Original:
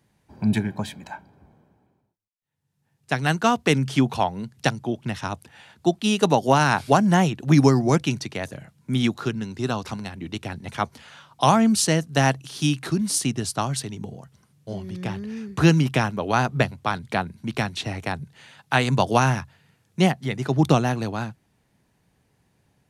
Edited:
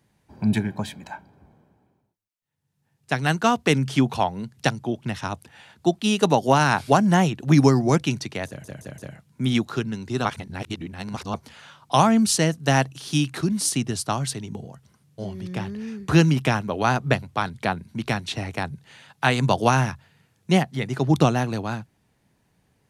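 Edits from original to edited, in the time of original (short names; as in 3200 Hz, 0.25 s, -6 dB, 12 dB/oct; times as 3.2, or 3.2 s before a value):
8.47 stutter 0.17 s, 4 plays
9.74–10.83 reverse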